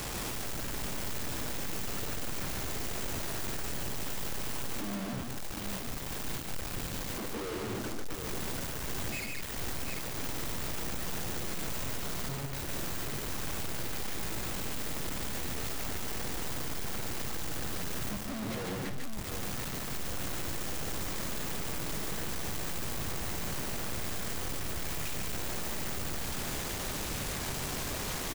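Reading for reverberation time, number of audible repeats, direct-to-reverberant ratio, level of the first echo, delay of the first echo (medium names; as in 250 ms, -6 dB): no reverb, 3, no reverb, -12.5 dB, 55 ms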